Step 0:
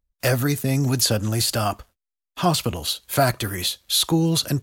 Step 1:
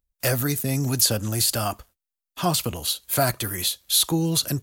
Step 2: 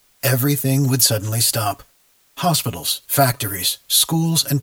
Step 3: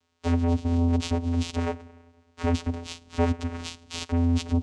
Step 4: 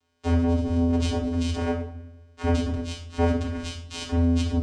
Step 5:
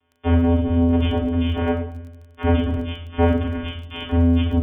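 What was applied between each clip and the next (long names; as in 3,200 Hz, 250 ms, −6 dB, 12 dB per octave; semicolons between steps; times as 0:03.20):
high-shelf EQ 7,400 Hz +10 dB; level −3.5 dB
comb filter 7.2 ms, depth 90%; bit-depth reduction 10 bits, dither triangular; level +2 dB
spring reverb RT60 1.6 s, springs 49/54 ms, chirp 60 ms, DRR 18 dB; asymmetric clip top −19 dBFS; channel vocoder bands 4, square 84.9 Hz; level −3.5 dB
rectangular room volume 780 cubic metres, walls furnished, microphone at 3.2 metres; level −3 dB
linear-phase brick-wall low-pass 3,500 Hz; surface crackle 24 per second −43 dBFS; level +5 dB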